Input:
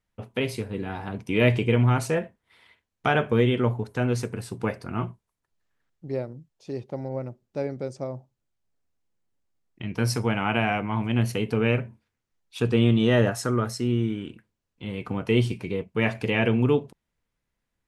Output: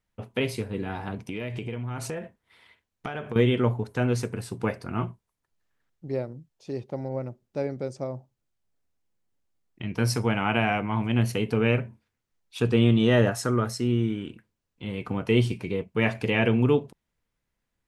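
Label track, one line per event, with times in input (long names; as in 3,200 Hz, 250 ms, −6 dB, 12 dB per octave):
1.140000	3.360000	downward compressor 8 to 1, threshold −29 dBFS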